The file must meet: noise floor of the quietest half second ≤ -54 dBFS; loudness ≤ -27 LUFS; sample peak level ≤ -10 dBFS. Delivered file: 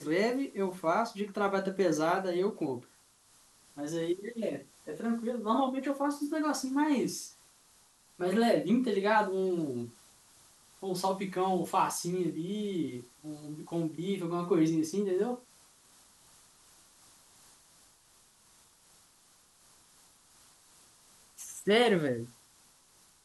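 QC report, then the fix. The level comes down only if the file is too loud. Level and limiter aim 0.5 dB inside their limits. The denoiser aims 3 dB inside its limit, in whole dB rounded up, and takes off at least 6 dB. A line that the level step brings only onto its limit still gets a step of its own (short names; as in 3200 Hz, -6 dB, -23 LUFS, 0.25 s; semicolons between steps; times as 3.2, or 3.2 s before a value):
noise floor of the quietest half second -63 dBFS: OK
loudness -31.5 LUFS: OK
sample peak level -14.0 dBFS: OK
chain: none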